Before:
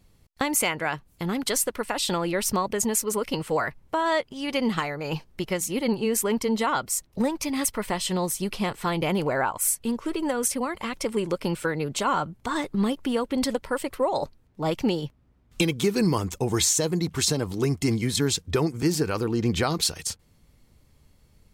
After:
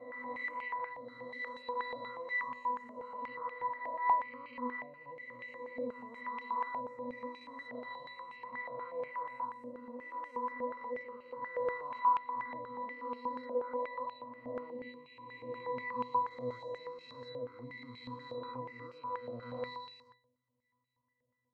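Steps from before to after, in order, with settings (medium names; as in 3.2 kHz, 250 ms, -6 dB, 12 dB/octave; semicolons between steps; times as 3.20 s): reverse spectral sustain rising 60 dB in 2.51 s; pitch-class resonator B, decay 0.5 s; step-sequenced band-pass 8.3 Hz 660–2600 Hz; trim +11.5 dB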